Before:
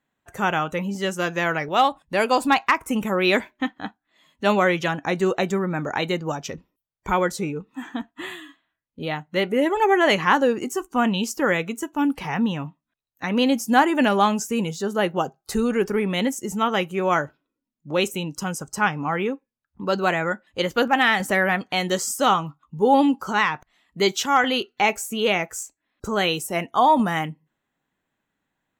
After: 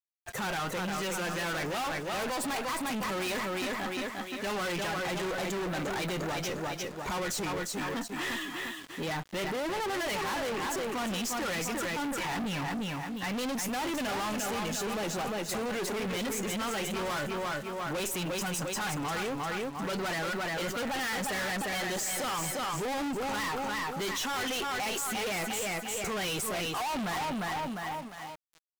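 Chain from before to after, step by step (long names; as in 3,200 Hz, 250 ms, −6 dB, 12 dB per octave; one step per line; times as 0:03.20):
spectral magnitudes quantised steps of 15 dB
low-shelf EQ 380 Hz −8 dB
on a send: repeating echo 351 ms, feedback 34%, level −8 dB
on the sum: tube saturation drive 32 dB, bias 0.45
in parallel at −1.5 dB: compressor whose output falls as the input rises −39 dBFS
on the sum: dead-zone distortion −47.5 dBFS
power curve on the samples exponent 0.35
level −6.5 dB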